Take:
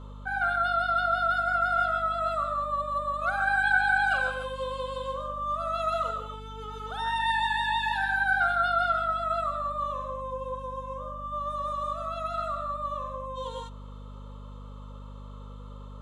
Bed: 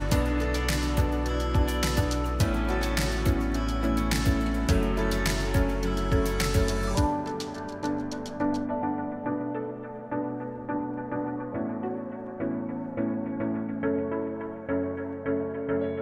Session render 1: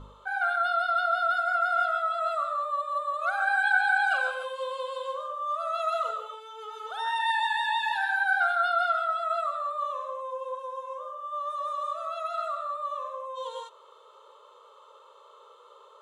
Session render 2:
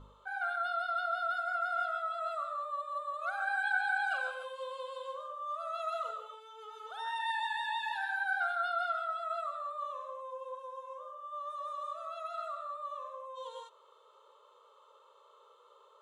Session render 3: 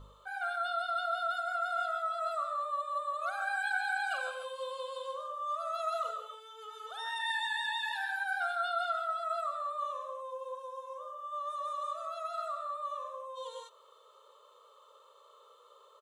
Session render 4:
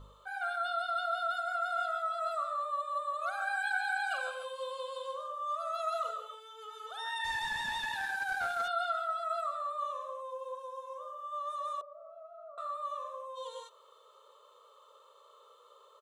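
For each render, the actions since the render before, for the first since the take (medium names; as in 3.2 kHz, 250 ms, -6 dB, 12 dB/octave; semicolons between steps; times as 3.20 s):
de-hum 50 Hz, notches 12
trim -8 dB
treble shelf 4.9 kHz +9 dB; comb 1.7 ms, depth 34%
7.24–8.68 s: one-bit delta coder 64 kbps, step -47 dBFS; 11.81–12.58 s: resonant low-pass 380 Hz, resonance Q 2.8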